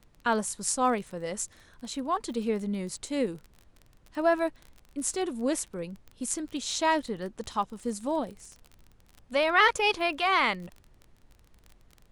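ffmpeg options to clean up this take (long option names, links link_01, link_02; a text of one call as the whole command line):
ffmpeg -i in.wav -af "adeclick=threshold=4,agate=range=-21dB:threshold=-51dB" out.wav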